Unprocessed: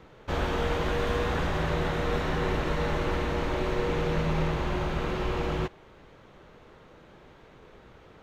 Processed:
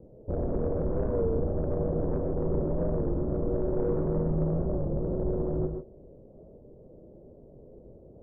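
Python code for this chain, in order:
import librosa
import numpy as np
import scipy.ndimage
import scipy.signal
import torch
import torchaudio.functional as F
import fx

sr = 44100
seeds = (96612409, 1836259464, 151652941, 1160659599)

y = fx.tracing_dist(x, sr, depth_ms=0.28)
y = scipy.signal.sosfilt(scipy.signal.cheby1(4, 1.0, 600.0, 'lowpass', fs=sr, output='sos'), y)
y = 10.0 ** (-24.0 / 20.0) * np.tanh(y / 10.0 ** (-24.0 / 20.0))
y = fx.rev_gated(y, sr, seeds[0], gate_ms=170, shape='rising', drr_db=4.5)
y = fx.record_warp(y, sr, rpm=33.33, depth_cents=100.0)
y = y * 10.0 ** (2.5 / 20.0)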